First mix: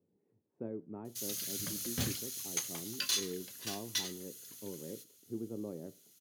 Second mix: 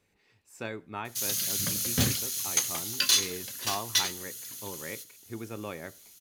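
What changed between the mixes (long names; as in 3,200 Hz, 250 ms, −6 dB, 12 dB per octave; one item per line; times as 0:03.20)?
speech: remove flat-topped band-pass 250 Hz, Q 0.77
background +9.5 dB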